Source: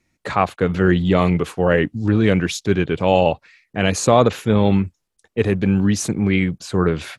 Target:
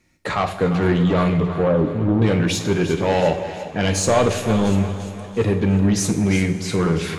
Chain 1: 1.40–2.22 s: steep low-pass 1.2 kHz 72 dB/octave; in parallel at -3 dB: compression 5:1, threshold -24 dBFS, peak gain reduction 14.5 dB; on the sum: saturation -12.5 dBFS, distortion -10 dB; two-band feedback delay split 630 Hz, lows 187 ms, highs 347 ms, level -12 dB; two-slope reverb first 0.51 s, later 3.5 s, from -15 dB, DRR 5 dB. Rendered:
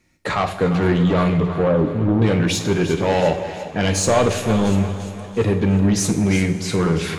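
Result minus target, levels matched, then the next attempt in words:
compression: peak gain reduction -7.5 dB
1.40–2.22 s: steep low-pass 1.2 kHz 72 dB/octave; in parallel at -3 dB: compression 5:1, threshold -33.5 dBFS, peak gain reduction 22 dB; on the sum: saturation -12.5 dBFS, distortion -11 dB; two-band feedback delay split 630 Hz, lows 187 ms, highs 347 ms, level -12 dB; two-slope reverb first 0.51 s, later 3.5 s, from -15 dB, DRR 5 dB

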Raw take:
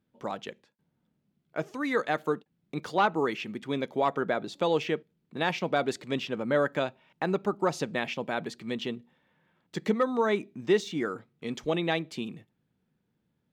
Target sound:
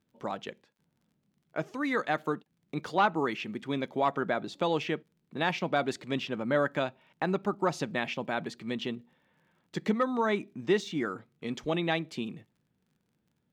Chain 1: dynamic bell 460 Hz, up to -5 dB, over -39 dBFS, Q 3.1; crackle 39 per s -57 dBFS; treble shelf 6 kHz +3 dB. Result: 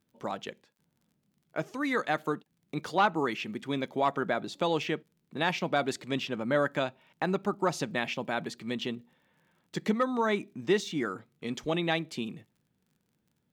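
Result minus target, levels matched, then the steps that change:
8 kHz band +4.0 dB
change: treble shelf 6 kHz -4.5 dB

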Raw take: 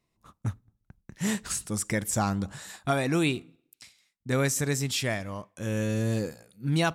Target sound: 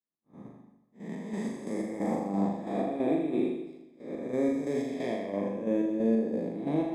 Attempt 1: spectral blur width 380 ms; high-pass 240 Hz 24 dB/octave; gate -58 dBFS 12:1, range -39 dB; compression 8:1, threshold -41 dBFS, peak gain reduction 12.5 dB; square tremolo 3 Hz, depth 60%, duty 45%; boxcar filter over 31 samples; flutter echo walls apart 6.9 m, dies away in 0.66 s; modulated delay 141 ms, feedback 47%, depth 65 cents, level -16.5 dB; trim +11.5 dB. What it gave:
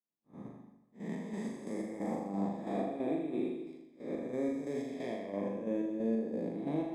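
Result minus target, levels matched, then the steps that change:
compression: peak gain reduction +6.5 dB
change: compression 8:1, threshold -33.5 dBFS, peak gain reduction 6 dB

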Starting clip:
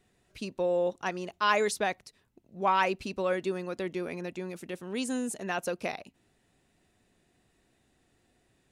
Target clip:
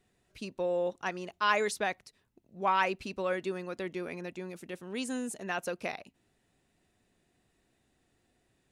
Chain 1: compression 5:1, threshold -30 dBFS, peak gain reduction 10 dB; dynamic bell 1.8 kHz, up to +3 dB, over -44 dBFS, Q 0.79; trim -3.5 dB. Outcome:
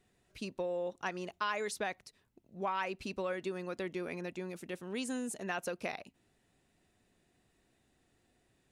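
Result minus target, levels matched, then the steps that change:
compression: peak gain reduction +10 dB
remove: compression 5:1, threshold -30 dBFS, peak gain reduction 10 dB

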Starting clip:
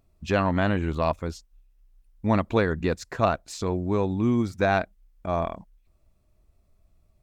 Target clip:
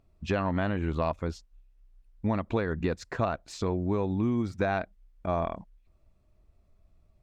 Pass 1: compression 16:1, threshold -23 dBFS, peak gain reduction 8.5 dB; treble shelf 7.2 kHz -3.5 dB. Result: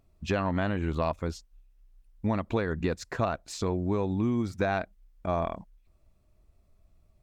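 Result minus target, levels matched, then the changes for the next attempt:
8 kHz band +4.5 dB
change: treble shelf 7.2 kHz -13.5 dB

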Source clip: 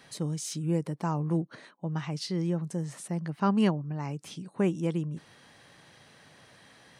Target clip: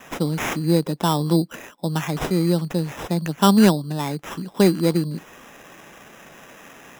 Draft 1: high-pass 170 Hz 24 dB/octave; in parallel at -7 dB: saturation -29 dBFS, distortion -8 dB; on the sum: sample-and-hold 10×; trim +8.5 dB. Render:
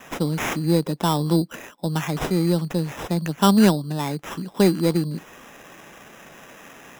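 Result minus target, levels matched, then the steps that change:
saturation: distortion +10 dB
change: saturation -19.5 dBFS, distortion -18 dB

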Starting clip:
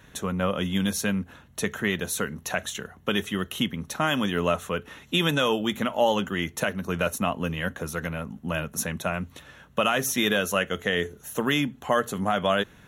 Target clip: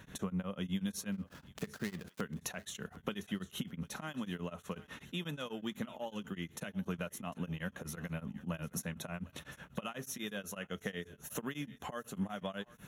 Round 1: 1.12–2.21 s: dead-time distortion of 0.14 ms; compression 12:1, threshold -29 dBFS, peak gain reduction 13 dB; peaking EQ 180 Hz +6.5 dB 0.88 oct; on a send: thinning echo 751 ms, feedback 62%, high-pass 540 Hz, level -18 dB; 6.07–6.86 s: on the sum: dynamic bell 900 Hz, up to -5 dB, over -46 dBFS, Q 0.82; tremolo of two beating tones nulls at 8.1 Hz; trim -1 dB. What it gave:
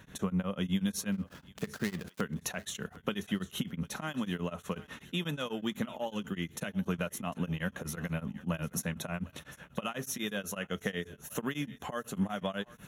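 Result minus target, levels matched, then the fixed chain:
compression: peak gain reduction -5.5 dB
1.12–2.21 s: dead-time distortion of 0.14 ms; compression 12:1, threshold -35 dBFS, peak gain reduction 18.5 dB; peaking EQ 180 Hz +6.5 dB 0.88 oct; on a send: thinning echo 751 ms, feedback 62%, high-pass 540 Hz, level -18 dB; 6.07–6.86 s: on the sum: dynamic bell 900 Hz, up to -5 dB, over -46 dBFS, Q 0.82; tremolo of two beating tones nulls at 8.1 Hz; trim -1 dB

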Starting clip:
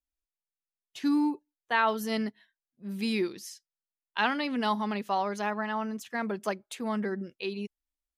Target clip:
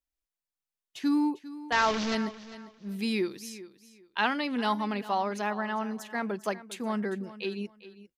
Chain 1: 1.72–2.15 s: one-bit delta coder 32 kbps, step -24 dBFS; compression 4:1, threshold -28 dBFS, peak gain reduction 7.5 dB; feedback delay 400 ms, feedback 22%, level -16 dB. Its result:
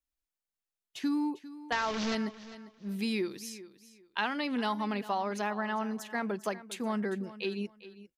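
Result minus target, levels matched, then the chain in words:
compression: peak gain reduction +7.5 dB
1.72–2.15 s: one-bit delta coder 32 kbps, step -24 dBFS; feedback delay 400 ms, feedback 22%, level -16 dB

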